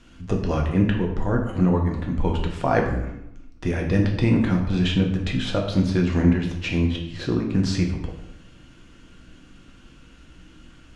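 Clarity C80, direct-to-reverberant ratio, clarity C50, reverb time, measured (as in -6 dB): 8.5 dB, 0.5 dB, 5.5 dB, 0.80 s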